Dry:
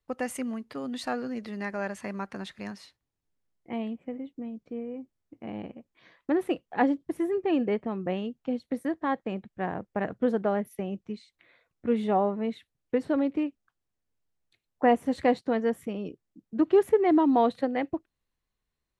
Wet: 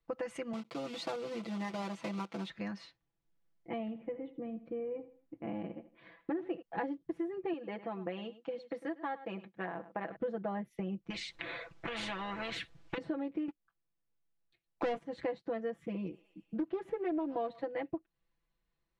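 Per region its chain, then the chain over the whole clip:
0.53–2.50 s: block-companded coder 3-bit + high-pass 130 Hz + peaking EQ 1.7 kHz -13 dB 0.26 oct
3.80–6.62 s: low-pass 3.2 kHz + feedback delay 79 ms, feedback 39%, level -16 dB
7.53–10.16 s: high-pass 570 Hz 6 dB/octave + delay 102 ms -17 dB
11.10–12.98 s: compression 5:1, threshold -25 dBFS + spectrum-flattening compressor 4:1
13.48–15.04 s: doubling 20 ms -13 dB + waveshaping leveller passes 3
15.75–17.62 s: thinning echo 121 ms, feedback 77%, high-pass 960 Hz, level -20.5 dB + loudspeaker Doppler distortion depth 0.22 ms
whole clip: Bessel low-pass 3.5 kHz, order 2; comb 6 ms, depth 90%; compression 4:1, threshold -34 dBFS; trim -1.5 dB

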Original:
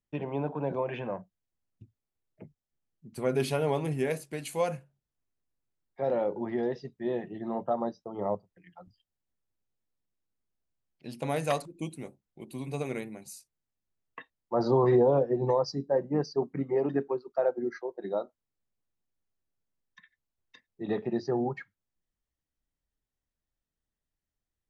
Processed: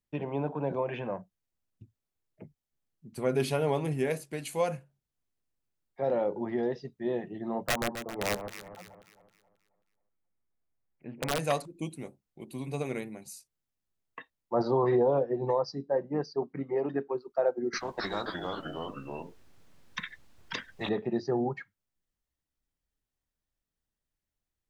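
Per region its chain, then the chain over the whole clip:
7.67–11.39 s: elliptic low-pass 2.3 kHz, stop band 80 dB + integer overflow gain 21.5 dB + echo whose repeats swap between lows and highs 134 ms, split 1.2 kHz, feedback 62%, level -7 dB
14.62–17.15 s: low-pass 4.6 kHz + bass shelf 370 Hz -5.5 dB
17.73–20.89 s: treble shelf 7.3 kHz -11.5 dB + ever faster or slower copies 264 ms, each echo -2 st, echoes 3, each echo -6 dB + spectrum-flattening compressor 4:1
whole clip: none

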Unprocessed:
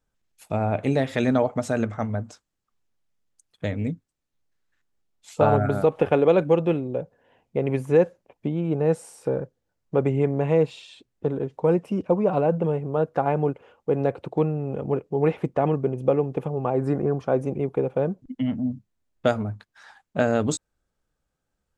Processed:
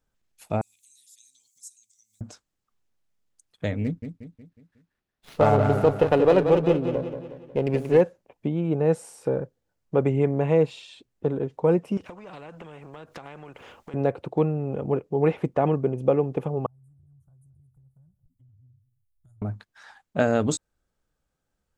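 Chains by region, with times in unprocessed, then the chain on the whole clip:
0.61–2.21 s: inverse Chebyshev high-pass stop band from 1.6 kHz, stop band 70 dB + upward compressor, threshold -51 dBFS
3.84–8.01 s: feedback delay 182 ms, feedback 47%, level -8 dB + sliding maximum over 5 samples
11.97–13.94 s: compression, threshold -36 dBFS + spectrum-flattening compressor 2:1
16.66–19.42 s: inverse Chebyshev band-stop 200–5400 Hz + compression 5:1, threshold -56 dBFS + multi-tap echo 128/224 ms -19.5/-16.5 dB
whole clip: none

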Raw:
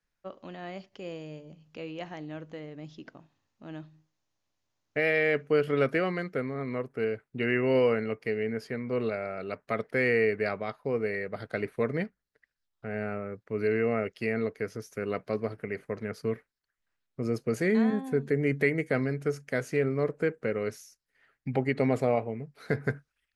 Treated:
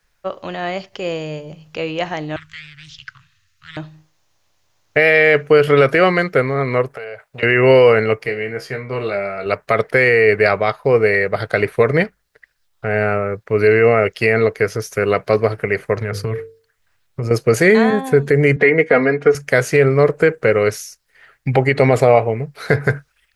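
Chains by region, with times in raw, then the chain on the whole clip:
2.36–3.77 s: inverse Chebyshev band-stop 200–810 Hz + loudspeaker Doppler distortion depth 0.42 ms
6.95–7.43 s: resonant low shelf 450 Hz -10 dB, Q 3 + compression 12:1, threshold -43 dBFS
8.26–9.46 s: peaking EQ 510 Hz -4 dB 0.22 oct + feedback comb 67 Hz, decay 0.2 s, mix 90%
15.96–17.31 s: peaking EQ 100 Hz +8.5 dB 0.93 oct + hum notches 50/100/150/200/250/300/350/400/450/500 Hz + compression, threshold -33 dBFS
18.56–19.35 s: band-pass 170–2700 Hz + comb 4.2 ms, depth 69%
whole clip: peaking EQ 240 Hz -11 dB 0.87 oct; loudness maximiser +19.5 dB; trim -1 dB

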